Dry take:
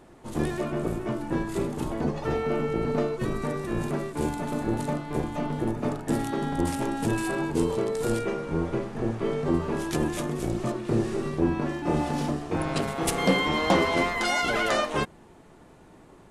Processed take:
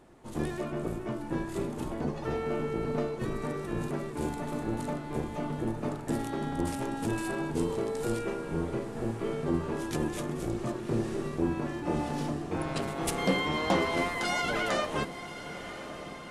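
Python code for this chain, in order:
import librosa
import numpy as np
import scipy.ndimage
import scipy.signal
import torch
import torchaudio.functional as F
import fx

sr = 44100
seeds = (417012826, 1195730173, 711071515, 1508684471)

y = fx.echo_diffused(x, sr, ms=1060, feedback_pct=60, wet_db=-12.5)
y = F.gain(torch.from_numpy(y), -5.0).numpy()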